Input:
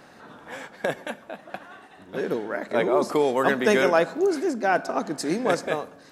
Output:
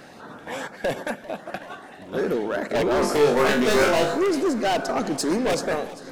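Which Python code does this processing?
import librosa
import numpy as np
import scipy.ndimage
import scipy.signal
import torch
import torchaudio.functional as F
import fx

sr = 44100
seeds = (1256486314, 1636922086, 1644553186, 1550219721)

p1 = fx.level_steps(x, sr, step_db=22)
p2 = x + F.gain(torch.from_numpy(p1), -1.0).numpy()
p3 = np.clip(p2, -10.0 ** (-21.5 / 20.0), 10.0 ** (-21.5 / 20.0))
p4 = fx.filter_lfo_notch(p3, sr, shape='saw_up', hz=2.6, low_hz=880.0, high_hz=3900.0, q=2.8)
p5 = 10.0 ** (-20.0 / 20.0) * np.tanh(p4 / 10.0 ** (-20.0 / 20.0))
p6 = fx.room_flutter(p5, sr, wall_m=3.5, rt60_s=0.34, at=(3.01, 4.17), fade=0.02)
p7 = fx.echo_warbled(p6, sr, ms=393, feedback_pct=70, rate_hz=2.8, cents=114, wet_db=-19)
y = F.gain(torch.from_numpy(p7), 4.5).numpy()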